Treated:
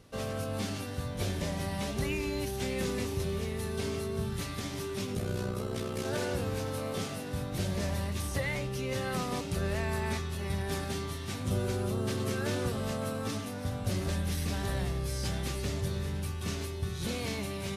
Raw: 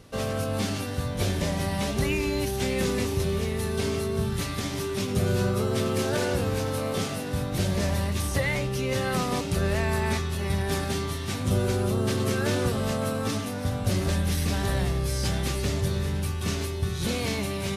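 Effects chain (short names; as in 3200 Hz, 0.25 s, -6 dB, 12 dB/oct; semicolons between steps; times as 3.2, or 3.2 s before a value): 5.15–6.05 AM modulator 62 Hz, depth 45%; gain -6.5 dB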